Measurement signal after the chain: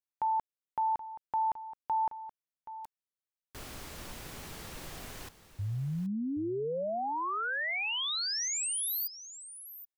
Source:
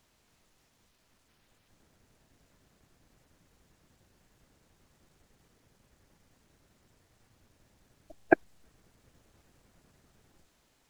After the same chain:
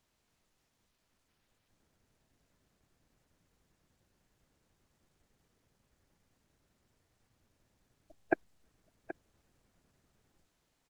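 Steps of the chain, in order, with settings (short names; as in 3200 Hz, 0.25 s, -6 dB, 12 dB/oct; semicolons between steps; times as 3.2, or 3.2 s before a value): echo 0.776 s -14 dB; gain -8.5 dB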